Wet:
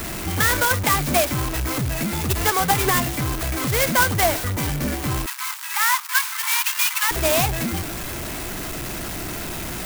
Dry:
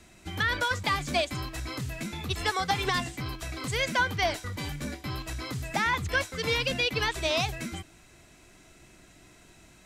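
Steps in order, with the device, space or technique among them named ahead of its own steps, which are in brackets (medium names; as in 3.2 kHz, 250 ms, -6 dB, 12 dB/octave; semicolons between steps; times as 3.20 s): early CD player with a faulty converter (jump at every zero crossing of -30.5 dBFS; sampling jitter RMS 0.07 ms); 5.26–7.11 s: steep high-pass 870 Hz 96 dB/octave; trim +6.5 dB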